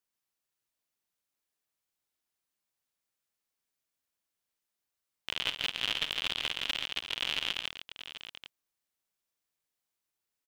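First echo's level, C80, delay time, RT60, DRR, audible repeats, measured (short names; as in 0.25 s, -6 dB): -13.0 dB, none, 52 ms, none, none, 3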